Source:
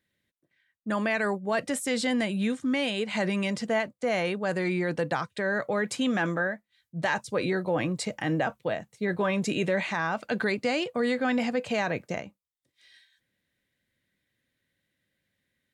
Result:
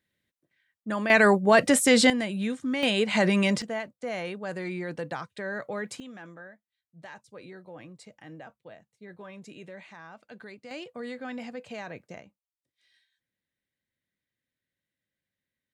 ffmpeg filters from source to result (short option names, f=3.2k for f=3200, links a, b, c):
-af "asetnsamples=n=441:p=0,asendcmd='1.1 volume volume 9dB;2.1 volume volume -2dB;2.83 volume volume 5dB;3.62 volume volume -6dB;6 volume volume -18dB;10.71 volume volume -11dB',volume=-1.5dB"